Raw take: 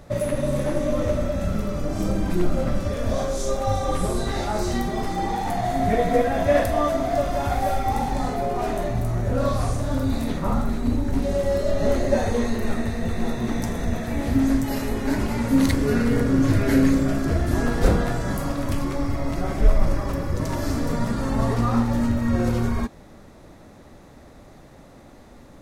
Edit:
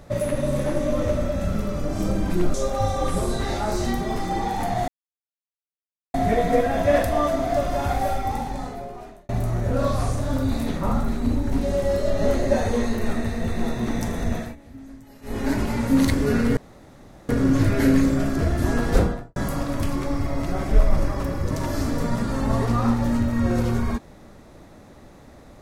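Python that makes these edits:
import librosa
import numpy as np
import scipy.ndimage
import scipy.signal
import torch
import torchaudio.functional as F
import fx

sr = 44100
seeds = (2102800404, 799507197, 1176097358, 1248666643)

y = fx.studio_fade_out(x, sr, start_s=17.83, length_s=0.42)
y = fx.edit(y, sr, fx.cut(start_s=2.54, length_s=0.87),
    fx.insert_silence(at_s=5.75, length_s=1.26),
    fx.fade_out_span(start_s=7.55, length_s=1.35),
    fx.fade_down_up(start_s=14.0, length_s=1.0, db=-21.5, fade_s=0.17),
    fx.insert_room_tone(at_s=16.18, length_s=0.72), tone=tone)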